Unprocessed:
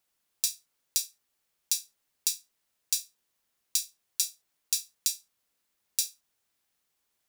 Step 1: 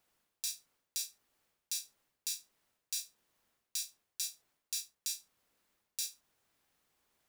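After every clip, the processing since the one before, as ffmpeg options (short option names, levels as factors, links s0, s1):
-af "highshelf=f=2500:g=-8.5,areverse,acompressor=threshold=0.00794:ratio=6,areverse,volume=2.24"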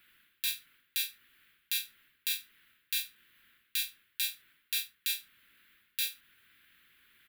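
-af "firequalizer=gain_entry='entry(290,0);entry(720,-18);entry(1500,12);entry(3400,10);entry(5600,-11);entry(8400,-6);entry(12000,5)':delay=0.05:min_phase=1,alimiter=limit=0.0944:level=0:latency=1:release=113,volume=2.37"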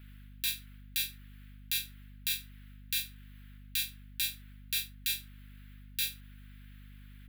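-af "aeval=exprs='val(0)+0.00316*(sin(2*PI*50*n/s)+sin(2*PI*2*50*n/s)/2+sin(2*PI*3*50*n/s)/3+sin(2*PI*4*50*n/s)/4+sin(2*PI*5*50*n/s)/5)':c=same"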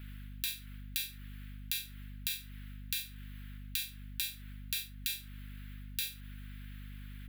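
-af "acompressor=threshold=0.0126:ratio=6,volume=1.78"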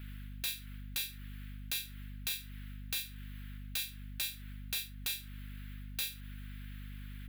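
-af "aeval=exprs='0.0422*(abs(mod(val(0)/0.0422+3,4)-2)-1)':c=same,volume=1.12"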